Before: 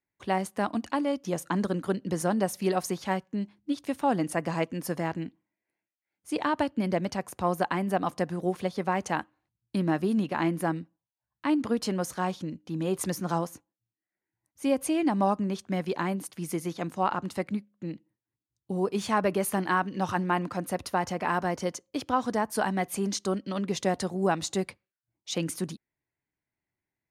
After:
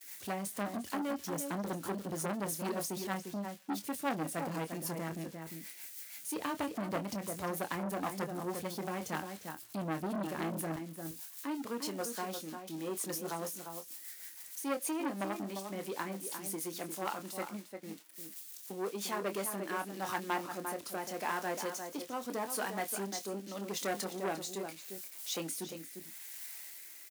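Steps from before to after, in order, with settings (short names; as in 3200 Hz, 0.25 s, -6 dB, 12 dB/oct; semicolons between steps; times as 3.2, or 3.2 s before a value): switching spikes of -29.5 dBFS; gate -42 dBFS, range -25 dB; HPF 61 Hz 12 dB/oct, from 10.76 s 280 Hz; rotary speaker horn 6.3 Hz, later 0.8 Hz, at 18.7; doubler 25 ms -9 dB; outdoor echo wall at 60 m, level -8 dB; core saturation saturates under 1500 Hz; gain -5 dB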